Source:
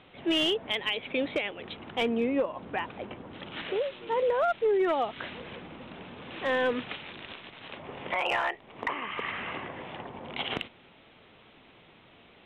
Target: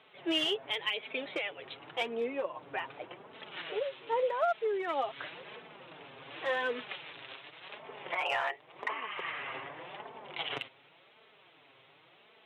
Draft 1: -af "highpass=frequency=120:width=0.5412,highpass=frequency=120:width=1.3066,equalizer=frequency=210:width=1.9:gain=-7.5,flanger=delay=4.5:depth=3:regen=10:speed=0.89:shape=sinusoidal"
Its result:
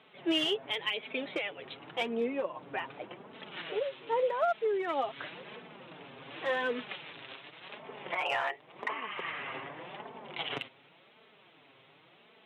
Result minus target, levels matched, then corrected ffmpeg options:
250 Hz band +3.0 dB
-af "highpass=frequency=120:width=0.5412,highpass=frequency=120:width=1.3066,equalizer=frequency=210:width=1.9:gain=-17,flanger=delay=4.5:depth=3:regen=10:speed=0.89:shape=sinusoidal"

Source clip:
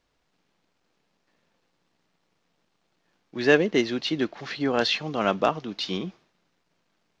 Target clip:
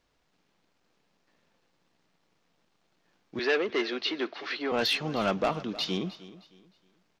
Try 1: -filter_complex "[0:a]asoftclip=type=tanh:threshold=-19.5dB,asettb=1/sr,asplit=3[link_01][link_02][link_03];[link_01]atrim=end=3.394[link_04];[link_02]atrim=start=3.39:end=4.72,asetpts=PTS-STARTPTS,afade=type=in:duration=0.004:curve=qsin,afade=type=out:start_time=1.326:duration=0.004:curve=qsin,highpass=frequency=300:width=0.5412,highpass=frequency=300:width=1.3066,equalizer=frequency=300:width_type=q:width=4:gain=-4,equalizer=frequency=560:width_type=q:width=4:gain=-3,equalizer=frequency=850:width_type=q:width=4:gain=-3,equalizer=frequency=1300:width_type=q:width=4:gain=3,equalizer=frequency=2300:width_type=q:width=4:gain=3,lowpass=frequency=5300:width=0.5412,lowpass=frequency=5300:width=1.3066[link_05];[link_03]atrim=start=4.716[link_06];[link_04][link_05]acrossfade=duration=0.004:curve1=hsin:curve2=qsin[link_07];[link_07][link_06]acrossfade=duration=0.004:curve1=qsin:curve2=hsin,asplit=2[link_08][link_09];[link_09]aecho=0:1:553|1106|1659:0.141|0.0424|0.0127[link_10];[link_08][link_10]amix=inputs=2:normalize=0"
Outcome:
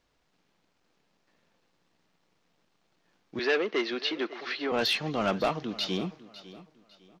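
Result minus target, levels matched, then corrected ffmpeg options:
echo 243 ms late
-filter_complex "[0:a]asoftclip=type=tanh:threshold=-19.5dB,asettb=1/sr,asplit=3[link_01][link_02][link_03];[link_01]atrim=end=3.394[link_04];[link_02]atrim=start=3.39:end=4.72,asetpts=PTS-STARTPTS,afade=type=in:duration=0.004:curve=qsin,afade=type=out:start_time=1.326:duration=0.004:curve=qsin,highpass=frequency=300:width=0.5412,highpass=frequency=300:width=1.3066,equalizer=frequency=300:width_type=q:width=4:gain=-4,equalizer=frequency=560:width_type=q:width=4:gain=-3,equalizer=frequency=850:width_type=q:width=4:gain=-3,equalizer=frequency=1300:width_type=q:width=4:gain=3,equalizer=frequency=2300:width_type=q:width=4:gain=3,lowpass=frequency=5300:width=0.5412,lowpass=frequency=5300:width=1.3066[link_05];[link_03]atrim=start=4.716[link_06];[link_04][link_05]acrossfade=duration=0.004:curve1=hsin:curve2=qsin[link_07];[link_07][link_06]acrossfade=duration=0.004:curve1=qsin:curve2=hsin,asplit=2[link_08][link_09];[link_09]aecho=0:1:310|620|930:0.141|0.0424|0.0127[link_10];[link_08][link_10]amix=inputs=2:normalize=0"

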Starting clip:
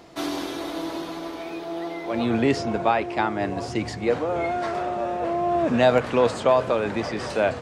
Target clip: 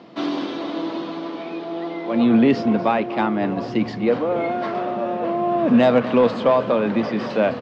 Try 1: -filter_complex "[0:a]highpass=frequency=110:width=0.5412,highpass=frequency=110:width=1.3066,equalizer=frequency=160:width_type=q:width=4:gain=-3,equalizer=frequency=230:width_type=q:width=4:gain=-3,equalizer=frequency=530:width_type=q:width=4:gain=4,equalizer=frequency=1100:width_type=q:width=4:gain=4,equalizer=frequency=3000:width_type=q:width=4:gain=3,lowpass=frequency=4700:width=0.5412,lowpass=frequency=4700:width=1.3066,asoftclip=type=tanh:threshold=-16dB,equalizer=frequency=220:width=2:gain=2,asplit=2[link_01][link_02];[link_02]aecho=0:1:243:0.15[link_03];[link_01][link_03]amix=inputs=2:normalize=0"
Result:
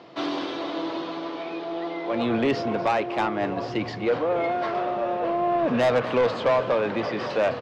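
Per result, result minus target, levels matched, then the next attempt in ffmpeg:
soft clipping: distortion +11 dB; 250 Hz band −4.0 dB
-filter_complex "[0:a]highpass=frequency=110:width=0.5412,highpass=frequency=110:width=1.3066,equalizer=frequency=160:width_type=q:width=4:gain=-3,equalizer=frequency=230:width_type=q:width=4:gain=-3,equalizer=frequency=530:width_type=q:width=4:gain=4,equalizer=frequency=1100:width_type=q:width=4:gain=4,equalizer=frequency=3000:width_type=q:width=4:gain=3,lowpass=frequency=4700:width=0.5412,lowpass=frequency=4700:width=1.3066,asoftclip=type=tanh:threshold=-7dB,equalizer=frequency=220:width=2:gain=2,asplit=2[link_01][link_02];[link_02]aecho=0:1:243:0.15[link_03];[link_01][link_03]amix=inputs=2:normalize=0"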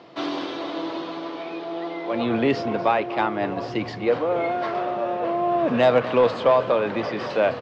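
250 Hz band −5.0 dB
-filter_complex "[0:a]highpass=frequency=110:width=0.5412,highpass=frequency=110:width=1.3066,equalizer=frequency=160:width_type=q:width=4:gain=-3,equalizer=frequency=230:width_type=q:width=4:gain=-3,equalizer=frequency=530:width_type=q:width=4:gain=4,equalizer=frequency=1100:width_type=q:width=4:gain=4,equalizer=frequency=3000:width_type=q:width=4:gain=3,lowpass=frequency=4700:width=0.5412,lowpass=frequency=4700:width=1.3066,asoftclip=type=tanh:threshold=-7dB,equalizer=frequency=220:width=2:gain=14,asplit=2[link_01][link_02];[link_02]aecho=0:1:243:0.15[link_03];[link_01][link_03]amix=inputs=2:normalize=0"

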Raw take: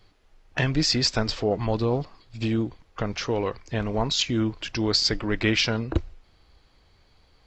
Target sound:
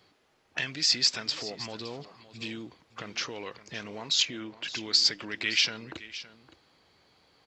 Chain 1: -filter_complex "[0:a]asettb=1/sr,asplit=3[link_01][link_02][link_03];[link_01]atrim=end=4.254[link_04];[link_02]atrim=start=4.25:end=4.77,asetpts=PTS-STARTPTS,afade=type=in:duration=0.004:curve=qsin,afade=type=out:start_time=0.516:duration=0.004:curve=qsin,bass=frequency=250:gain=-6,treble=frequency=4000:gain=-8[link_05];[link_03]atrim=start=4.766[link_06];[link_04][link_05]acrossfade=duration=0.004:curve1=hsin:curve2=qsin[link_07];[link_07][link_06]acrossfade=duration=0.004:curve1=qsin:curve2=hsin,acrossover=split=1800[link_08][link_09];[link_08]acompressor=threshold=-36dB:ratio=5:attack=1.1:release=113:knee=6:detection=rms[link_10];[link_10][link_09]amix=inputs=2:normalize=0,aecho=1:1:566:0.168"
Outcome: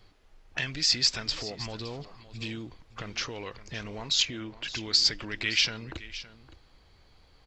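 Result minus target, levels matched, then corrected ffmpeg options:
125 Hz band +7.0 dB
-filter_complex "[0:a]asettb=1/sr,asplit=3[link_01][link_02][link_03];[link_01]atrim=end=4.254[link_04];[link_02]atrim=start=4.25:end=4.77,asetpts=PTS-STARTPTS,afade=type=in:duration=0.004:curve=qsin,afade=type=out:start_time=0.516:duration=0.004:curve=qsin,bass=frequency=250:gain=-6,treble=frequency=4000:gain=-8[link_05];[link_03]atrim=start=4.766[link_06];[link_04][link_05]acrossfade=duration=0.004:curve1=hsin:curve2=qsin[link_07];[link_07][link_06]acrossfade=duration=0.004:curve1=qsin:curve2=hsin,acrossover=split=1800[link_08][link_09];[link_08]acompressor=threshold=-36dB:ratio=5:attack=1.1:release=113:knee=6:detection=rms,highpass=170[link_10];[link_10][link_09]amix=inputs=2:normalize=0,aecho=1:1:566:0.168"

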